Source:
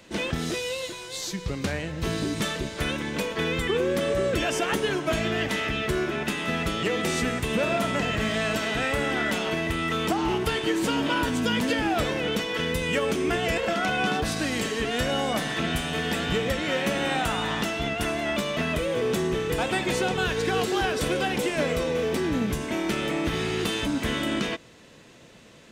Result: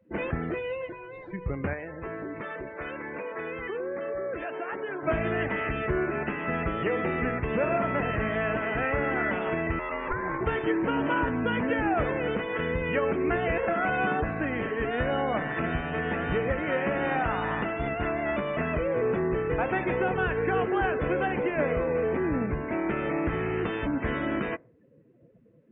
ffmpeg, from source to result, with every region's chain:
ffmpeg -i in.wav -filter_complex "[0:a]asettb=1/sr,asplit=3[link_01][link_02][link_03];[link_01]atrim=end=1.734[link_04];[link_02]atrim=start=1.73:end=5.03,asetpts=PTS-STARTPTS,afade=type=in:duration=0.004:curve=qsin,afade=type=out:start_time=3.296:duration=0.004:curve=qsin,bass=frequency=250:gain=-12,treble=frequency=4000:gain=-2,acompressor=threshold=-31dB:ratio=2.5:attack=3.2:release=140:knee=1:detection=peak[link_05];[link_03]atrim=start=5.026[link_06];[link_04][link_05]acrossfade=duration=0.004:curve1=hsin:curve2=qsin[link_07];[link_07][link_06]acrossfade=duration=0.004:curve1=qsin:curve2=hsin,asettb=1/sr,asplit=3[link_08][link_09][link_10];[link_08]atrim=end=9.794[link_11];[link_09]atrim=start=9.79:end=10.41,asetpts=PTS-STARTPTS,afade=type=in:duration=0.004:curve=qsin,afade=type=out:start_time=0.616:duration=0.004:curve=qsin,lowshelf=frequency=350:gain=-5,aeval=exprs='val(0)*sin(2*PI*700*n/s)':channel_layout=same[link_12];[link_10]atrim=start=10.406[link_13];[link_11][link_12]acrossfade=duration=0.004:curve1=hsin:curve2=qsin[link_14];[link_14][link_13]acrossfade=duration=0.004:curve1=qsin:curve2=hsin,lowpass=frequency=2200:width=0.5412,lowpass=frequency=2200:width=1.3066,afftdn=noise_reduction=25:noise_floor=-43,equalizer=frequency=210:width_type=o:width=0.66:gain=-4.5" out.wav

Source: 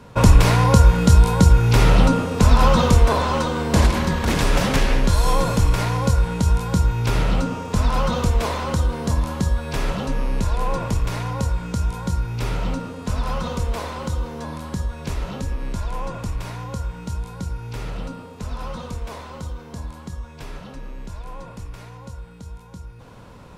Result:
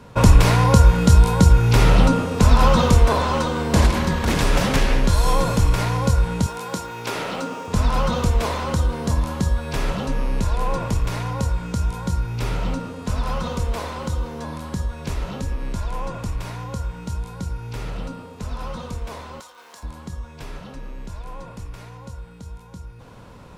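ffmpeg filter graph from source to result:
ffmpeg -i in.wav -filter_complex "[0:a]asettb=1/sr,asplit=3[link_01][link_02][link_03];[link_01]atrim=end=6.464[link_04];[link_02]atrim=start=6.46:end=7.68,asetpts=PTS-STARTPTS,afade=type=in:duration=0.004:curve=qsin,afade=type=out:start_time=1.216:duration=0.004:curve=qsin,highpass=310,acrusher=bits=8:mix=0:aa=0.5[link_05];[link_03]atrim=start=7.676[link_06];[link_04][link_05]acrossfade=duration=0.004:curve1=hsin:curve2=qsin[link_07];[link_07][link_06]acrossfade=duration=0.004:curve1=qsin:curve2=hsin,asettb=1/sr,asplit=3[link_08][link_09][link_10];[link_08]atrim=end=19.404[link_11];[link_09]atrim=start=19.4:end=19.83,asetpts=PTS-STARTPTS,afade=type=in:duration=0.004:curve=qsin,afade=type=out:start_time=0.426:duration=0.004:curve=qsin,aeval=exprs='val(0)+0.5*0.00631*sgn(val(0))':channel_layout=same,highpass=870[link_12];[link_10]atrim=start=19.826[link_13];[link_11][link_12]acrossfade=duration=0.004:curve1=hsin:curve2=qsin[link_14];[link_14][link_13]acrossfade=duration=0.004:curve1=qsin:curve2=hsin" out.wav

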